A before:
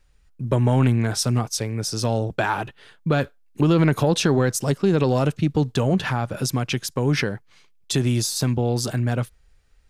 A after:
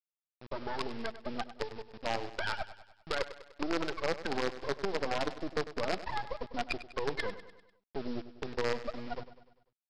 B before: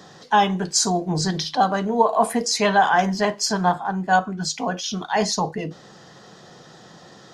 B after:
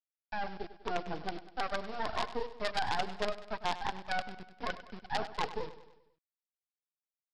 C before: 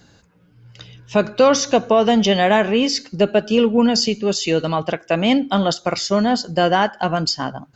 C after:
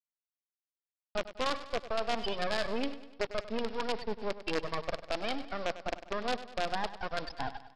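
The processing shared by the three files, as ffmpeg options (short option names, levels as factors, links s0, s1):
-af "afftfilt=real='re*pow(10,8/40*sin(2*PI*(0.65*log(max(b,1)*sr/1024/100)/log(2)-(1.3)*(pts-256)/sr)))':imag='im*pow(10,8/40*sin(2*PI*(0.65*log(max(b,1)*sr/1024/100)/log(2)-(1.3)*(pts-256)/sr)))':win_size=1024:overlap=0.75,lowpass=2400,agate=range=0.0224:threshold=0.01:ratio=3:detection=peak,afftfilt=real='re*gte(hypot(re,im),0.251)':imag='im*gte(hypot(re,im),0.251)':win_size=1024:overlap=0.75,highpass=600,areverse,acompressor=threshold=0.0355:ratio=6,areverse,alimiter=level_in=1.26:limit=0.0631:level=0:latency=1:release=122,volume=0.794,dynaudnorm=f=450:g=3:m=1.41,aresample=11025,acrusher=bits=5:dc=4:mix=0:aa=0.000001,aresample=44100,asoftclip=type=tanh:threshold=0.0944,aecho=1:1:99|198|297|396|495:0.2|0.106|0.056|0.0297|0.0157,volume=1.19"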